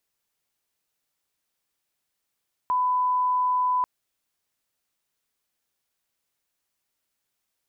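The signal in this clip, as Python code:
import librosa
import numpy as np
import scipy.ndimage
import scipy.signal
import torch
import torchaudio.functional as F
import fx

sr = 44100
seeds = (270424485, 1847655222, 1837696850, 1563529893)

y = fx.lineup_tone(sr, length_s=1.14, level_db=-20.0)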